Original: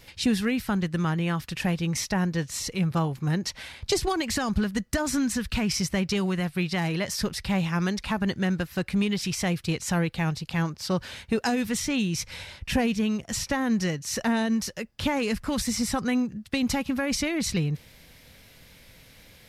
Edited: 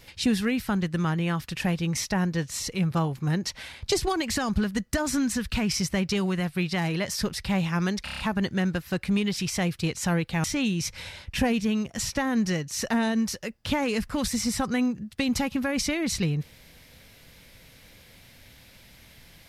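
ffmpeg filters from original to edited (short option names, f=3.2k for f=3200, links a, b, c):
-filter_complex "[0:a]asplit=7[a][b][c][d][e][f][g];[a]atrim=end=8.072[h];[b]atrim=start=8.038:end=8.072[i];[c]atrim=start=8.038:end=8.072[j];[d]atrim=start=8.038:end=8.072[k];[e]atrim=start=8.038:end=8.072[l];[f]atrim=start=8.038:end=10.292[m];[g]atrim=start=11.778[n];[h][i]acrossfade=d=0.004:c1=hsin:c2=hsin[o];[o][j]acrossfade=d=0.004:c1=hsin:c2=hsin[p];[p][k]acrossfade=d=0.004:c1=hsin:c2=hsin[q];[q][l]acrossfade=d=0.004:c1=hsin:c2=hsin[r];[r][m]acrossfade=d=0.004:c1=hsin:c2=hsin[s];[s][n]acrossfade=d=0.004:c1=hsin:c2=hsin"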